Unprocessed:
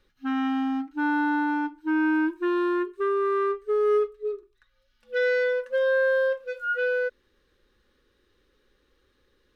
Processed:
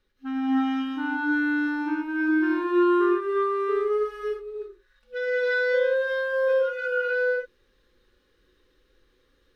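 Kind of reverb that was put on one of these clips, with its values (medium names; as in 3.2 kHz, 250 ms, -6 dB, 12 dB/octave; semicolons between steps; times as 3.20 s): gated-style reverb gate 380 ms rising, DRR -7 dB; trim -6.5 dB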